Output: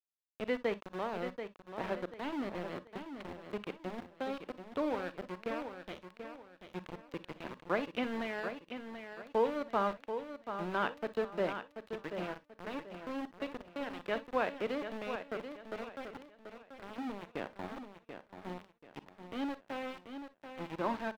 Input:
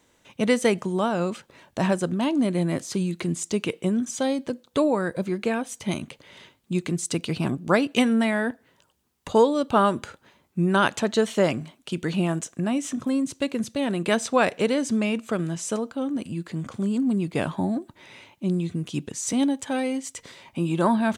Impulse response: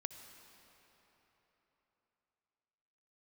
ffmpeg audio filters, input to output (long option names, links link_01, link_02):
-filter_complex "[0:a]acrossover=split=240 5400:gain=0.178 1 0.0708[link_01][link_02][link_03];[link_01][link_02][link_03]amix=inputs=3:normalize=0,aeval=exprs='val(0)*gte(abs(val(0)),0.0562)':channel_layout=same,highshelf=frequency=4700:gain=-10,acrossover=split=4200[link_04][link_05];[link_05]acompressor=threshold=-53dB:ratio=4:attack=1:release=60[link_06];[link_04][link_06]amix=inputs=2:normalize=0,aecho=1:1:735|1470|2205|2940:0.376|0.12|0.0385|0.0123[link_07];[1:a]atrim=start_sample=2205,afade=type=out:start_time=0.16:duration=0.01,atrim=end_sample=7497,asetrate=74970,aresample=44100[link_08];[link_07][link_08]afir=irnorm=-1:irlink=0,volume=-3.5dB"